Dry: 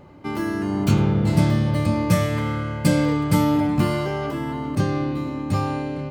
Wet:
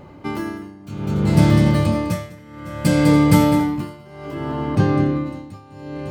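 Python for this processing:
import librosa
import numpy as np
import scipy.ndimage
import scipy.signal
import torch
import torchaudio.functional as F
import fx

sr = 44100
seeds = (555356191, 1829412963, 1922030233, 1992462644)

y = fx.echo_multitap(x, sr, ms=(203, 287, 553), db=(-8.0, -17.0, -14.5))
y = y * (1.0 - 0.95 / 2.0 + 0.95 / 2.0 * np.cos(2.0 * np.pi * 0.62 * (np.arange(len(y)) / sr)))
y = fx.lowpass(y, sr, hz=fx.line((4.33, 3400.0), (5.25, 2000.0)), slope=6, at=(4.33, 5.25), fade=0.02)
y = y * librosa.db_to_amplitude(5.0)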